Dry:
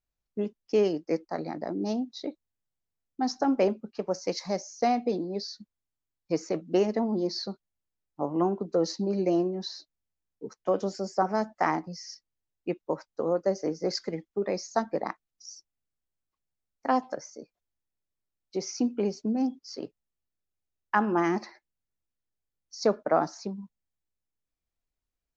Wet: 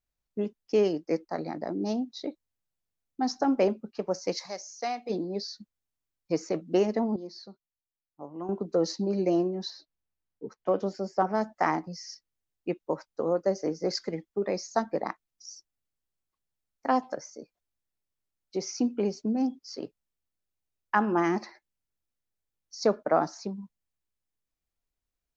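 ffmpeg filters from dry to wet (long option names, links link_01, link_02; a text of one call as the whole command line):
ffmpeg -i in.wav -filter_complex "[0:a]asplit=3[link_01][link_02][link_03];[link_01]afade=type=out:start_time=4.45:duration=0.02[link_04];[link_02]highpass=frequency=1300:poles=1,afade=type=in:start_time=4.45:duration=0.02,afade=type=out:start_time=5.09:duration=0.02[link_05];[link_03]afade=type=in:start_time=5.09:duration=0.02[link_06];[link_04][link_05][link_06]amix=inputs=3:normalize=0,asettb=1/sr,asplit=3[link_07][link_08][link_09];[link_07]atrim=end=9.704[link_10];[link_08]atrim=start=9.7:end=11.41,asetpts=PTS-STARTPTS,afade=type=in:duration=0.004:curve=qsin,afade=type=out:start_time=1.706:duration=0.004:curve=qsin,adynamicsmooth=sensitivity=1.5:basefreq=4600[link_11];[link_09]atrim=start=11.406[link_12];[link_10][link_11]acrossfade=duration=0.004:curve1=hsin:curve2=qsin[link_13];[link_13][link_12]acrossfade=duration=0.004:curve1=qsin:curve2=hsin,asplit=3[link_14][link_15][link_16];[link_14]atrim=end=7.162[link_17];[link_15]atrim=start=7.158:end=8.492,asetpts=PTS-STARTPTS,volume=-12dB[link_18];[link_16]atrim=start=8.488[link_19];[link_17][link_18]acrossfade=duration=0.004:curve1=hsin:curve2=hsin[link_20];[link_20][link_19]acrossfade=duration=0.004:curve1=hsin:curve2=hsin" out.wav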